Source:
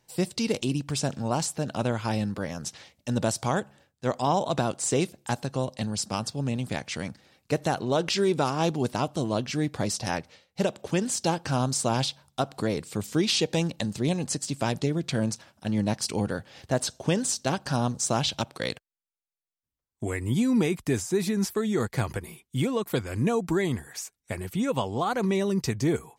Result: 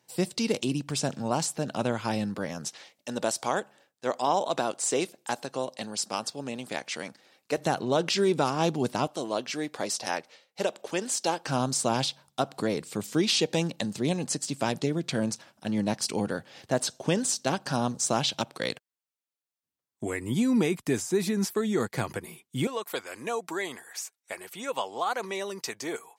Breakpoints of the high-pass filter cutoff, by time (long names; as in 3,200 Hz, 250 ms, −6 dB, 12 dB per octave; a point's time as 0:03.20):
150 Hz
from 0:02.67 330 Hz
from 0:07.57 140 Hz
from 0:09.07 370 Hz
from 0:11.48 160 Hz
from 0:22.67 580 Hz